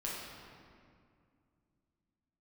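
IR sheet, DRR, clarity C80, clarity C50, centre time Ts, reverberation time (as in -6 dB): -6.0 dB, 1.0 dB, -1.0 dB, 115 ms, 2.2 s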